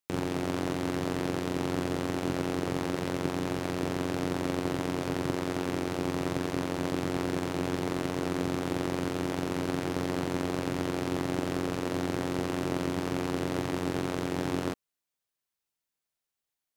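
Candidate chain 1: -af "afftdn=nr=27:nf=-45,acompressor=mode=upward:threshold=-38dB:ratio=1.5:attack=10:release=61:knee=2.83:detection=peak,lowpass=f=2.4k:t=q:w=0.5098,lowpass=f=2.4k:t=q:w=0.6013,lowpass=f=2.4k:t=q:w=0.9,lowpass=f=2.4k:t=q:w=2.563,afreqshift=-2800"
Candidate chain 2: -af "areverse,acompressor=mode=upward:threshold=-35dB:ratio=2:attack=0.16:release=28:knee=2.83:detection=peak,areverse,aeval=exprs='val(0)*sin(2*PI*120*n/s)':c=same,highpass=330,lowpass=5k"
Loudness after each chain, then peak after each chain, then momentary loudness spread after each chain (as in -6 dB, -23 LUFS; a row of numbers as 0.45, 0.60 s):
-28.5, -37.5 LUFS; -17.0, -17.5 dBFS; 1, 1 LU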